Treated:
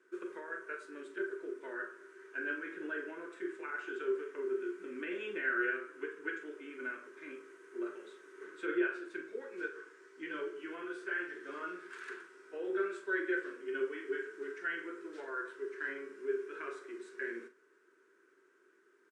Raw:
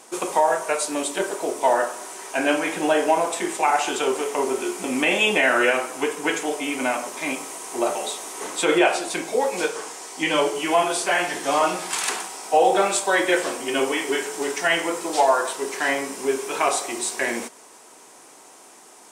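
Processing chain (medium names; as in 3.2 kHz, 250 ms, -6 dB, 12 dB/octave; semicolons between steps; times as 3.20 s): two resonant band-passes 760 Hz, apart 2 oct; doubling 43 ms -10.5 dB; trim -8.5 dB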